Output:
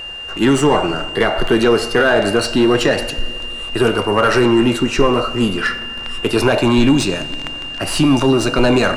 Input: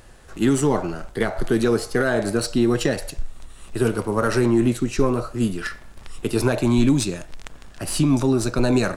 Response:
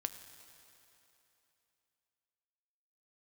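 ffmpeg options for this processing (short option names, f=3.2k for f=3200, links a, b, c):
-filter_complex "[0:a]asplit=2[a][b];[b]highpass=f=720:p=1,volume=17dB,asoftclip=type=tanh:threshold=-6dB[c];[a][c]amix=inputs=2:normalize=0,lowpass=f=2.3k:p=1,volume=-6dB,aeval=exprs='val(0)+0.0316*sin(2*PI*2800*n/s)':c=same,asplit=2[d][e];[1:a]atrim=start_sample=2205,lowshelf=f=98:g=11.5[f];[e][f]afir=irnorm=-1:irlink=0,volume=1.5dB[g];[d][g]amix=inputs=2:normalize=0,volume=-3.5dB"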